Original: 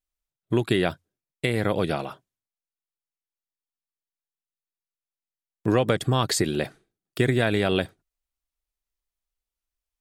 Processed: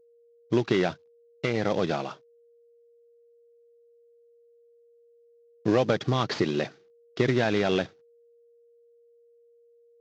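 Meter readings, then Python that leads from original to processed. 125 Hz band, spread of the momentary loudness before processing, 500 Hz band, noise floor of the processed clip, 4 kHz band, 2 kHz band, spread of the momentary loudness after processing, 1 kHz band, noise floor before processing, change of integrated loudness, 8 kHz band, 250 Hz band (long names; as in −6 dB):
−4.0 dB, 9 LU, −1.0 dB, −60 dBFS, −4.0 dB, −3.0 dB, 9 LU, −1.5 dB, below −85 dBFS, −2.0 dB, −12.5 dB, −1.5 dB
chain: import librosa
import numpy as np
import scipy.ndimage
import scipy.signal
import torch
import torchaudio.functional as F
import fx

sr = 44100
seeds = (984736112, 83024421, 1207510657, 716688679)

y = fx.cvsd(x, sr, bps=32000)
y = scipy.signal.sosfilt(scipy.signal.butter(2, 130.0, 'highpass', fs=sr, output='sos'), y)
y = y + 10.0 ** (-57.0 / 20.0) * np.sin(2.0 * np.pi * 470.0 * np.arange(len(y)) / sr)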